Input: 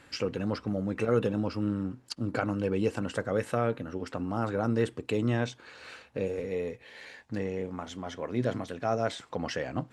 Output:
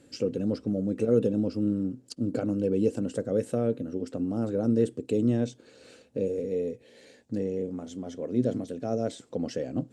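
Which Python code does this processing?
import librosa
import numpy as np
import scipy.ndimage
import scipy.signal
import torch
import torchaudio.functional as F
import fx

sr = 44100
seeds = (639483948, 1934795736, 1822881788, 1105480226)

y = fx.graphic_eq(x, sr, hz=(125, 250, 500, 1000, 2000, 8000), db=(4, 10, 9, -10, -6, 8))
y = y * 10.0 ** (-6.0 / 20.0)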